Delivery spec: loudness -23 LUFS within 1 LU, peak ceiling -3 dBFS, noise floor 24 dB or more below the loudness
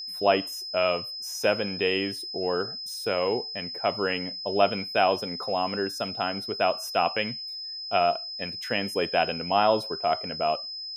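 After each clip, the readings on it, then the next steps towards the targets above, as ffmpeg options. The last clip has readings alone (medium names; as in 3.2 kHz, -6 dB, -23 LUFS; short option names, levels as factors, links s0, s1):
steady tone 5.1 kHz; tone level -34 dBFS; loudness -27.0 LUFS; peak level -7.5 dBFS; loudness target -23.0 LUFS
-> -af "bandreject=f=5100:w=30"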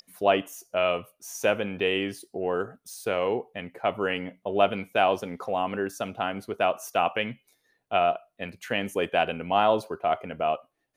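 steady tone not found; loudness -27.5 LUFS; peak level -8.0 dBFS; loudness target -23.0 LUFS
-> -af "volume=1.68"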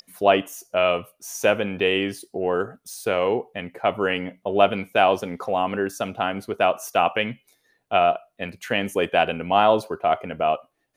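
loudness -23.0 LUFS; peak level -3.0 dBFS; noise floor -71 dBFS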